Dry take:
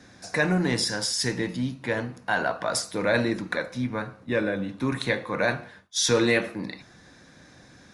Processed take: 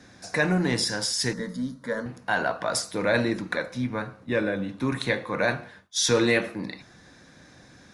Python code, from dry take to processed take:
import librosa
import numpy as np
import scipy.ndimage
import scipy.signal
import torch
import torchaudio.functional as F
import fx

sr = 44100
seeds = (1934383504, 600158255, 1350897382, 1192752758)

y = fx.fixed_phaser(x, sr, hz=520.0, stages=8, at=(1.33, 2.06))